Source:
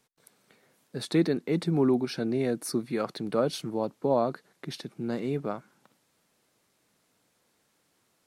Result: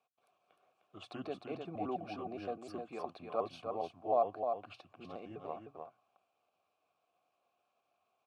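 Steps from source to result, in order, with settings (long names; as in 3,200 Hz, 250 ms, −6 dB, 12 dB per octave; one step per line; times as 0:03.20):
pitch shifter gated in a rhythm −4.5 semitones, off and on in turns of 103 ms
formant filter a
parametric band 92 Hz +12.5 dB 0.58 octaves
mains-hum notches 60/120 Hz
single-tap delay 305 ms −5.5 dB
level +3.5 dB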